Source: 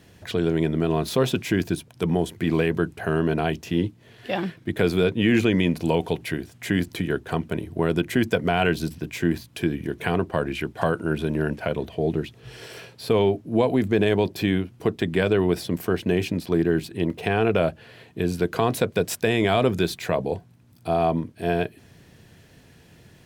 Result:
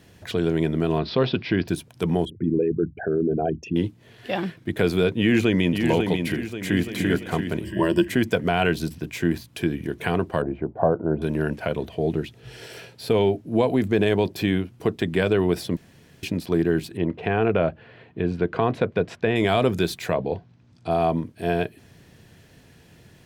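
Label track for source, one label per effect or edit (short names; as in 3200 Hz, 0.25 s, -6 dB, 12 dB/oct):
0.980000	1.680000	steep low-pass 5100 Hz 72 dB/oct
2.250000	3.760000	formant sharpening exponent 3
5.180000	5.820000	echo throw 0.54 s, feedback 45%, level -5.5 dB
6.380000	6.890000	echo throw 0.34 s, feedback 45%, level -1.5 dB
7.640000	8.080000	ripple EQ crests per octave 1.3, crest to trough 15 dB
10.420000	11.220000	synth low-pass 700 Hz, resonance Q 1.8
12.170000	13.500000	notch 1100 Hz, Q 8.6
15.770000	16.230000	room tone
16.970000	19.360000	LPF 2500 Hz
20.130000	20.890000	LPF 3900 Hz -> 7700 Hz 24 dB/oct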